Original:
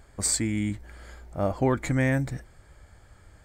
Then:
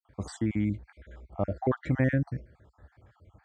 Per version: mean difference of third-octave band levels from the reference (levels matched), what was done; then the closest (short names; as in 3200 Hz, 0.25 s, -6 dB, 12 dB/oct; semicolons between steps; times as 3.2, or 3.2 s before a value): 7.5 dB: random spectral dropouts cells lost 49%; gate with hold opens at -58 dBFS; HPF 56 Hz 24 dB/oct; tape spacing loss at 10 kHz 29 dB; gain +1 dB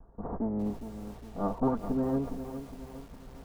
10.5 dB: minimum comb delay 4.3 ms; steep low-pass 1100 Hz 36 dB/oct; reverse; upward compressor, threshold -41 dBFS; reverse; lo-fi delay 0.411 s, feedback 55%, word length 8-bit, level -10 dB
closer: first